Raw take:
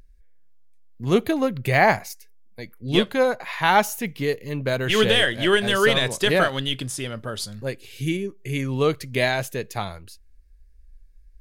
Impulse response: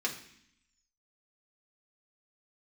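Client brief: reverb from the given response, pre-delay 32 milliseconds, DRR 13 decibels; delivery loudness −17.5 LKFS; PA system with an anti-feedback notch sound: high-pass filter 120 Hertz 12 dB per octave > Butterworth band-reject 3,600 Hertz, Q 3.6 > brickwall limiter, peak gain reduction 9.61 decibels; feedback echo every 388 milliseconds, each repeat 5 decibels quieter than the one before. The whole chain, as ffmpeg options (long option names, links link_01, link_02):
-filter_complex "[0:a]aecho=1:1:388|776|1164|1552|1940|2328|2716:0.562|0.315|0.176|0.0988|0.0553|0.031|0.0173,asplit=2[link_01][link_02];[1:a]atrim=start_sample=2205,adelay=32[link_03];[link_02][link_03]afir=irnorm=-1:irlink=0,volume=-18.5dB[link_04];[link_01][link_04]amix=inputs=2:normalize=0,highpass=120,asuperstop=centerf=3600:order=8:qfactor=3.6,volume=6.5dB,alimiter=limit=-5.5dB:level=0:latency=1"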